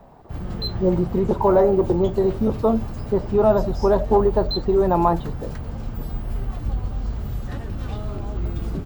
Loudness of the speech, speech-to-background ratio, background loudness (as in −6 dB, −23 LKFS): −20.5 LKFS, 10.0 dB, −30.5 LKFS